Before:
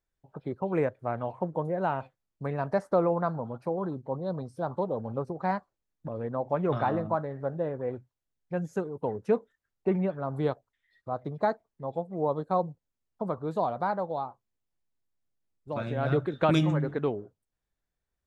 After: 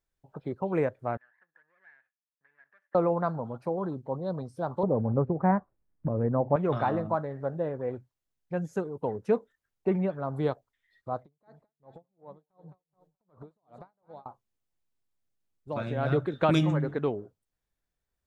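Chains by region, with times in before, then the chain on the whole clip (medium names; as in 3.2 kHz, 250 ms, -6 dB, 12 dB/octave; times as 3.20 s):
1.17–2.95 s: comb filter that takes the minimum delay 0.34 ms + compression 2:1, threshold -43 dBFS + band-pass filter 1.7 kHz, Q 17
4.83–6.56 s: block-companded coder 7-bit + low-pass 2 kHz 24 dB/octave + bass shelf 420 Hz +10.5 dB
11.19–14.26 s: compression 8:1, threshold -40 dBFS + feedback delay 214 ms, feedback 43%, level -11.5 dB + logarithmic tremolo 2.7 Hz, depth 39 dB
whole clip: none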